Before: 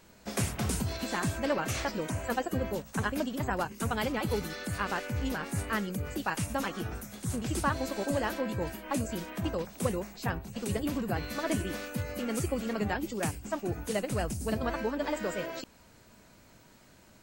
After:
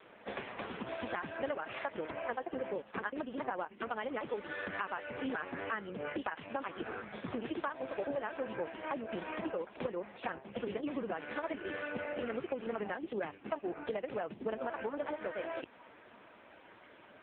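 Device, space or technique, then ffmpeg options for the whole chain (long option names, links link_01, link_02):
voicemail: -filter_complex "[0:a]asplit=3[link_01][link_02][link_03];[link_01]afade=type=out:start_time=8.33:duration=0.02[link_04];[link_02]bandreject=frequency=50:width_type=h:width=6,bandreject=frequency=100:width_type=h:width=6,bandreject=frequency=150:width_type=h:width=6,afade=type=in:start_time=8.33:duration=0.02,afade=type=out:start_time=9.56:duration=0.02[link_05];[link_03]afade=type=in:start_time=9.56:duration=0.02[link_06];[link_04][link_05][link_06]amix=inputs=3:normalize=0,highpass=360,lowpass=3200,acompressor=threshold=-42dB:ratio=10,volume=9.5dB" -ar 8000 -c:a libopencore_amrnb -b:a 5150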